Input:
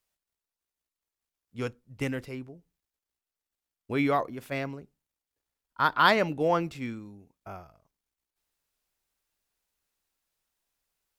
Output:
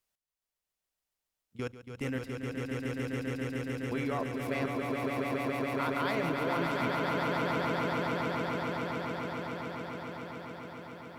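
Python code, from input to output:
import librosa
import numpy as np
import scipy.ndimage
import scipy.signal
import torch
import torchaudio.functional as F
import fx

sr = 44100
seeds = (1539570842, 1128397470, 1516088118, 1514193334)

y = fx.level_steps(x, sr, step_db=17)
y = fx.echo_swell(y, sr, ms=140, loudest=8, wet_db=-4)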